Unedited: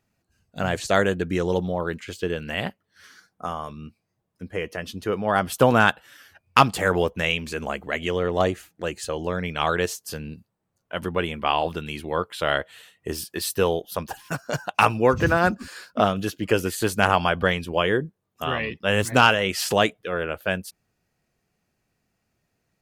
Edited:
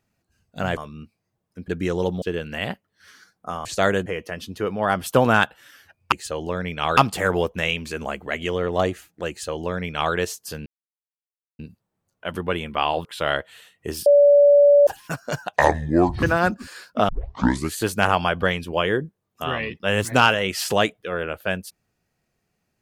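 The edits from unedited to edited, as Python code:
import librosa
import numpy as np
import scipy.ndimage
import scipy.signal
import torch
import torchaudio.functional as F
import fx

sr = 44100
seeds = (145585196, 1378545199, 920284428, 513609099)

y = fx.edit(x, sr, fx.swap(start_s=0.77, length_s=0.41, other_s=3.61, other_length_s=0.91),
    fx.cut(start_s=1.72, length_s=0.46),
    fx.duplicate(start_s=8.9, length_s=0.85, to_s=6.58),
    fx.insert_silence(at_s=10.27, length_s=0.93),
    fx.cut(start_s=11.73, length_s=0.53),
    fx.bleep(start_s=13.27, length_s=0.81, hz=575.0, db=-9.5),
    fx.speed_span(start_s=14.77, length_s=0.46, speed=0.69),
    fx.tape_start(start_s=16.09, length_s=0.67), tone=tone)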